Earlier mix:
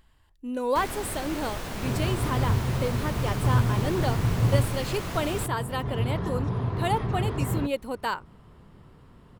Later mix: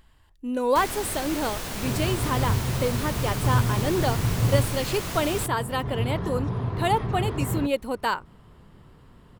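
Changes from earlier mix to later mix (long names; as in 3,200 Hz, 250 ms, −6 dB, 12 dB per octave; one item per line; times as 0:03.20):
speech +3.5 dB
first sound: add high-shelf EQ 3,400 Hz +8.5 dB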